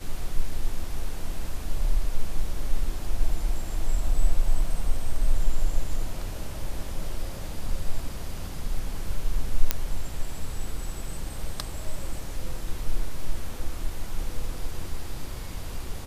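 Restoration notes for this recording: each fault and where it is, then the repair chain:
9.71 s: pop -4 dBFS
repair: de-click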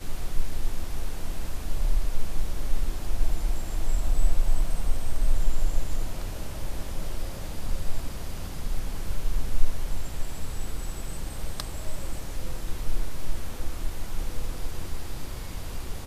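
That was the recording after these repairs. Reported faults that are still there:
nothing left

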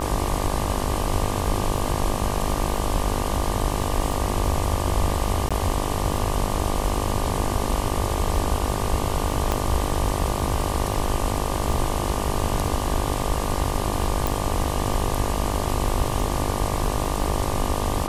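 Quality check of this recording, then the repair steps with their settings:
buzz 50 Hz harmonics 24 -28 dBFS
crackle 33 per s -30 dBFS
5.49–5.51 s: dropout 16 ms
9.52 s: pop -8 dBFS
14.27 s: pop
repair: de-click; de-hum 50 Hz, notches 24; interpolate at 5.49 s, 16 ms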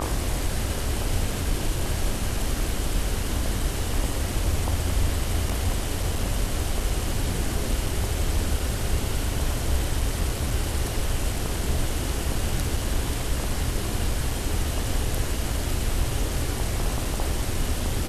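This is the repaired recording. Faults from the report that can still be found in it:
9.52 s: pop

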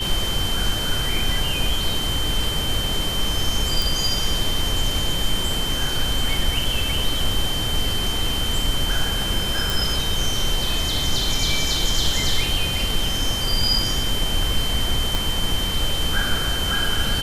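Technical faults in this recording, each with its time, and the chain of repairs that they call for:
whine 3.1 kHz -25 dBFS
3.82 s: pop
9.70 s: pop
15.15 s: pop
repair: de-click; band-stop 3.1 kHz, Q 30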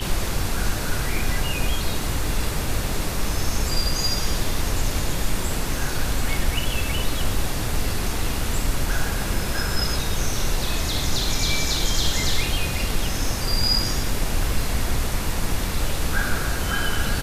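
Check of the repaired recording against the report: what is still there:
15.15 s: pop

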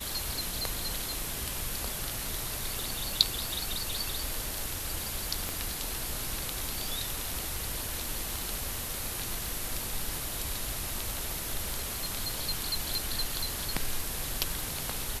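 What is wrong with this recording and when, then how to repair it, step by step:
crackle 35 per s -37 dBFS
5.49 s: pop -17 dBFS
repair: de-click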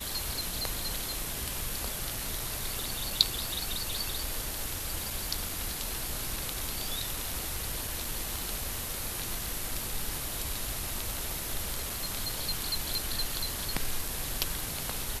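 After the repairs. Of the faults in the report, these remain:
nothing left

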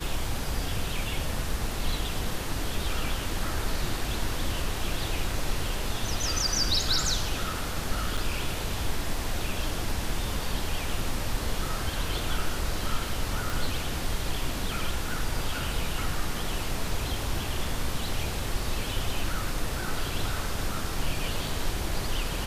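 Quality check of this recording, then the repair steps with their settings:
8.17–8.18 s: dropout 6.2 ms
13.50 s: pop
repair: de-click; interpolate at 8.17 s, 6.2 ms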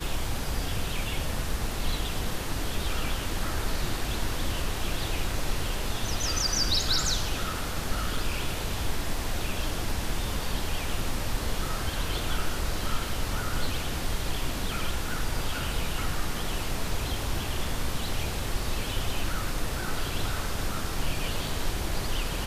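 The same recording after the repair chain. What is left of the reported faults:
13.50 s: pop

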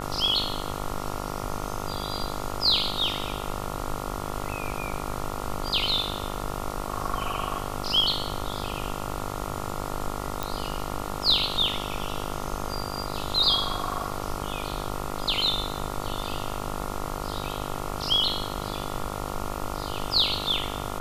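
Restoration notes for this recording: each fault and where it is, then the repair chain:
buzz 50 Hz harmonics 28 -34 dBFS
10.43 s: pop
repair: de-click; de-hum 50 Hz, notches 28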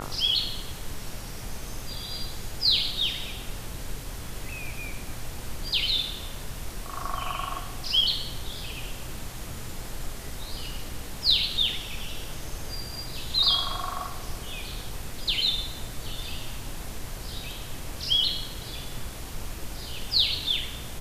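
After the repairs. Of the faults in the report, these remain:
nothing left

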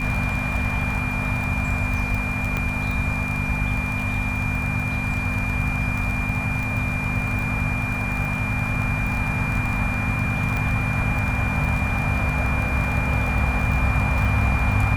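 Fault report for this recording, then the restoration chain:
crackle 25 per s -25 dBFS
hum 50 Hz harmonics 5 -28 dBFS
whine 2.4 kHz -27 dBFS
2.57 s: pop -12 dBFS
10.57 s: pop -14 dBFS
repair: de-click; de-hum 50 Hz, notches 5; band-stop 2.4 kHz, Q 30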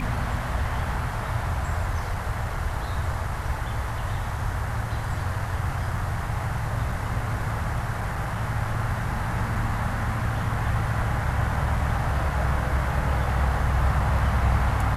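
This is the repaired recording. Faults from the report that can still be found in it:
nothing left

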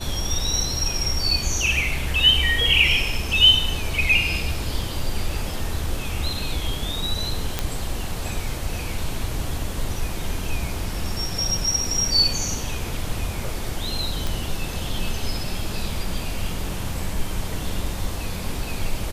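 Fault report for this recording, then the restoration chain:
7.59 s: pop -7 dBFS
14.27 s: pop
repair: de-click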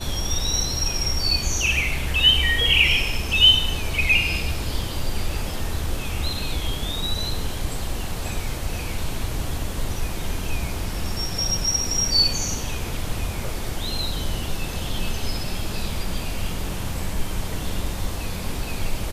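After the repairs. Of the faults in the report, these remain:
nothing left

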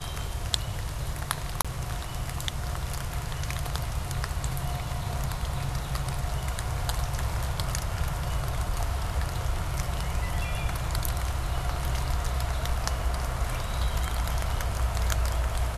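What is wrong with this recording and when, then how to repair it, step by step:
1.62–1.65 s: dropout 26 ms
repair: interpolate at 1.62 s, 26 ms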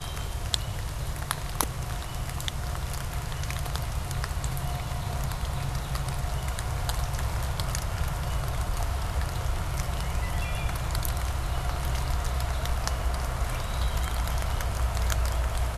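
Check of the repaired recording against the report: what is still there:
nothing left

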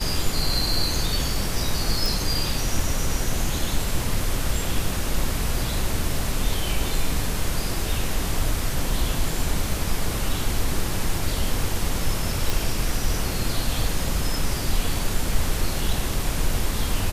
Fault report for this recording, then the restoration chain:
2.06 s: pop
12.50 s: pop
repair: de-click

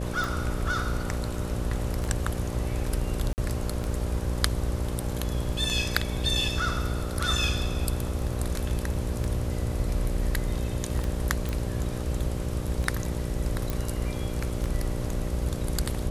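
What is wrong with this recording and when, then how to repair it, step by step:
buzz 60 Hz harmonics 10 -32 dBFS
tick 33 1/3 rpm
3.33–3.38 s: dropout 49 ms
11.49 s: pop
13.70 s: pop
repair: de-click; de-hum 60 Hz, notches 10; interpolate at 3.33 s, 49 ms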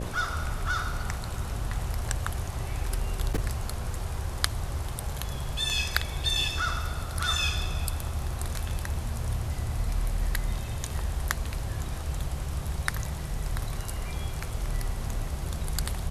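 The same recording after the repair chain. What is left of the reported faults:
13.70 s: pop

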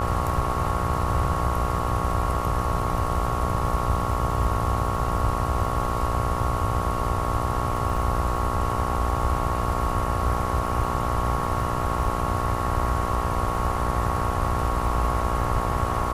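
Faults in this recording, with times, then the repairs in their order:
buzz 60 Hz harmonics 23 -29 dBFS
crackle 25 per s -33 dBFS
whine 1.1 kHz -30 dBFS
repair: de-click; band-stop 1.1 kHz, Q 30; de-hum 60 Hz, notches 23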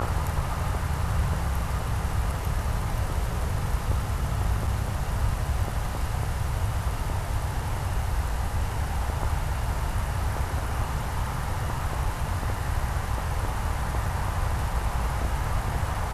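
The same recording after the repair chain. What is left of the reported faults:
nothing left

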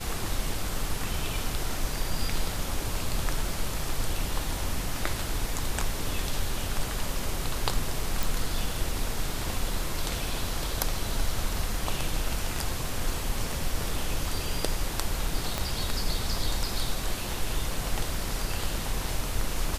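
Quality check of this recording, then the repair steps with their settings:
8.23 s: pop
15.58 s: pop -12 dBFS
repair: de-click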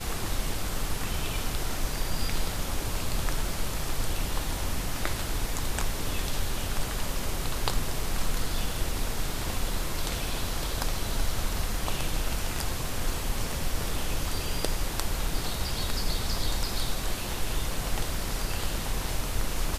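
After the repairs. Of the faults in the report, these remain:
15.58 s: pop

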